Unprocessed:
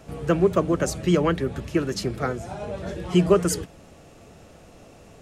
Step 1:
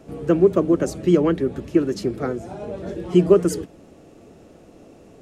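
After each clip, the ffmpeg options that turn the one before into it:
-af "equalizer=f=320:t=o:w=1.6:g=11.5,volume=0.562"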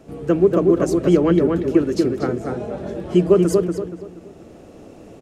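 -filter_complex "[0:a]asplit=2[s0][s1];[s1]adelay=237,lowpass=f=2300:p=1,volume=0.708,asplit=2[s2][s3];[s3]adelay=237,lowpass=f=2300:p=1,volume=0.34,asplit=2[s4][s5];[s5]adelay=237,lowpass=f=2300:p=1,volume=0.34,asplit=2[s6][s7];[s7]adelay=237,lowpass=f=2300:p=1,volume=0.34[s8];[s0][s2][s4][s6][s8]amix=inputs=5:normalize=0,dynaudnorm=f=510:g=3:m=1.58"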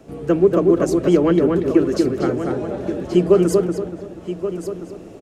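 -filter_complex "[0:a]acrossover=split=210|2700[s0][s1][s2];[s0]asoftclip=type=tanh:threshold=0.0562[s3];[s3][s1][s2]amix=inputs=3:normalize=0,aecho=1:1:1128:0.282,volume=1.12"

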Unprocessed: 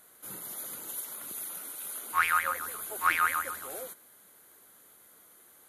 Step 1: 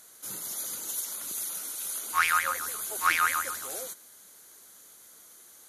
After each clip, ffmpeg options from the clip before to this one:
-af "equalizer=f=5900:t=o:w=1.2:g=14.5"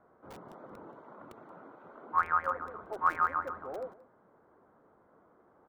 -filter_complex "[0:a]lowpass=f=1100:w=0.5412,lowpass=f=1100:w=1.3066,acrossover=split=320[s0][s1];[s0]aeval=exprs='(mod(299*val(0)+1,2)-1)/299':c=same[s2];[s2][s1]amix=inputs=2:normalize=0,aecho=1:1:178:0.1,volume=1.58"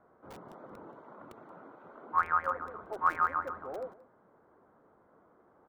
-af anull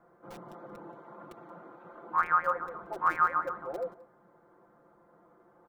-af "aecho=1:1:5.8:0.83"

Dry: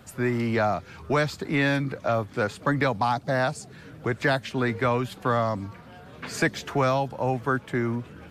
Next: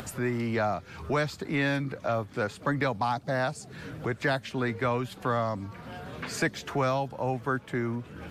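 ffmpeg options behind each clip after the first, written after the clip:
-af "acompressor=mode=upward:threshold=0.0501:ratio=2.5,volume=0.631"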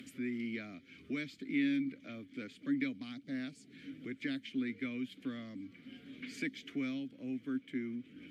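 -filter_complex "[0:a]asplit=3[s0][s1][s2];[s0]bandpass=f=270:t=q:w=8,volume=1[s3];[s1]bandpass=f=2290:t=q:w=8,volume=0.501[s4];[s2]bandpass=f=3010:t=q:w=8,volume=0.355[s5];[s3][s4][s5]amix=inputs=3:normalize=0,aemphasis=mode=production:type=50fm,volume=1.19"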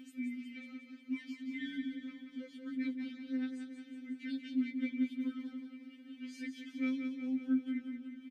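-af "aecho=1:1:182|364|546|728|910|1092|1274:0.447|0.259|0.15|0.0872|0.0505|0.0293|0.017,afftfilt=real='re*3.46*eq(mod(b,12),0)':imag='im*3.46*eq(mod(b,12),0)':win_size=2048:overlap=0.75,volume=0.668"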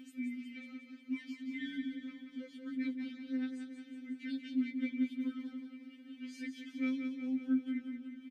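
-af anull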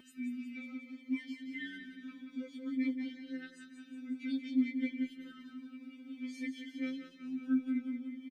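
-filter_complex "[0:a]asplit=2[s0][s1];[s1]adelay=2.8,afreqshift=0.56[s2];[s0][s2]amix=inputs=2:normalize=1,volume=1.58"

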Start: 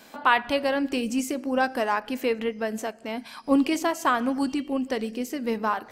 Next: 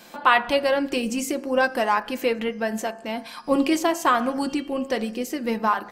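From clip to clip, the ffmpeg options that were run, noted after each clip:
-af "aecho=1:1:5.7:0.39,bandreject=f=67.91:t=h:w=4,bandreject=f=135.82:t=h:w=4,bandreject=f=203.73:t=h:w=4,bandreject=f=271.64:t=h:w=4,bandreject=f=339.55:t=h:w=4,bandreject=f=407.46:t=h:w=4,bandreject=f=475.37:t=h:w=4,bandreject=f=543.28:t=h:w=4,bandreject=f=611.19:t=h:w=4,bandreject=f=679.1:t=h:w=4,bandreject=f=747.01:t=h:w=4,bandreject=f=814.92:t=h:w=4,bandreject=f=882.83:t=h:w=4,bandreject=f=950.74:t=h:w=4,bandreject=f=1018.65:t=h:w=4,bandreject=f=1086.56:t=h:w=4,bandreject=f=1154.47:t=h:w=4,bandreject=f=1222.38:t=h:w=4,bandreject=f=1290.29:t=h:w=4,bandreject=f=1358.2:t=h:w=4,bandreject=f=1426.11:t=h:w=4,bandreject=f=1494.02:t=h:w=4,bandreject=f=1561.93:t=h:w=4,bandreject=f=1629.84:t=h:w=4,bandreject=f=1697.75:t=h:w=4,bandreject=f=1765.66:t=h:w=4,volume=1.41"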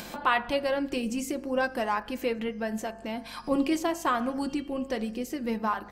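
-af "lowshelf=f=200:g=8.5,acompressor=mode=upward:threshold=0.0708:ratio=2.5,aeval=exprs='val(0)+0.00355*(sin(2*PI*50*n/s)+sin(2*PI*2*50*n/s)/2+sin(2*PI*3*50*n/s)/3+sin(2*PI*4*50*n/s)/4+sin(2*PI*5*50*n/s)/5)':c=same,volume=0.422"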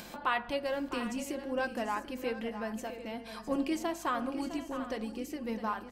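-af "aecho=1:1:658|739:0.266|0.188,volume=0.501"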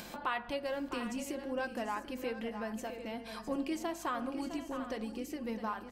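-af "acompressor=threshold=0.0126:ratio=1.5"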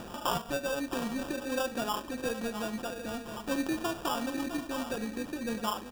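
-af "acrusher=samples=21:mix=1:aa=0.000001,volume=1.58"

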